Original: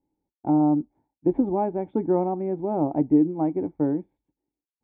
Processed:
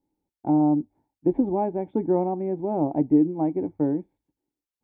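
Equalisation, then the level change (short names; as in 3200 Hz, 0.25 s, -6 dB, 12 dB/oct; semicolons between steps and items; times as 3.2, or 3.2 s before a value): notches 50/100 Hz; dynamic EQ 1300 Hz, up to -7 dB, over -51 dBFS, Q 3.4; 0.0 dB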